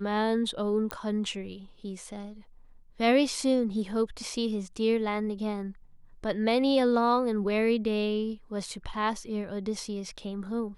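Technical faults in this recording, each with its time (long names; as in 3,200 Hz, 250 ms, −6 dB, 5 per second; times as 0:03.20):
0:00.91: click −15 dBFS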